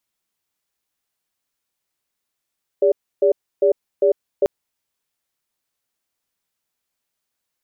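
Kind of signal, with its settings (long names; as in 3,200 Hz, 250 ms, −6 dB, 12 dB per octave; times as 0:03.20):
tone pair in a cadence 404 Hz, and 576 Hz, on 0.10 s, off 0.30 s, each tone −14.5 dBFS 1.64 s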